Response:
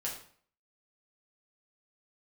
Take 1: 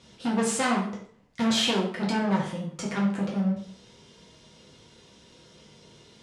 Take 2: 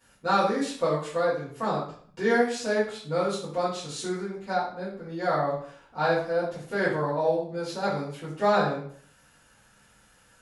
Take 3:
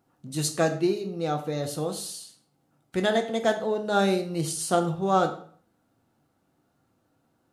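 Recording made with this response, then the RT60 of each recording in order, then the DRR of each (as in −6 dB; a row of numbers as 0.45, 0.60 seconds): 1; 0.50, 0.50, 0.50 seconds; −4.0, −12.5, 4.5 decibels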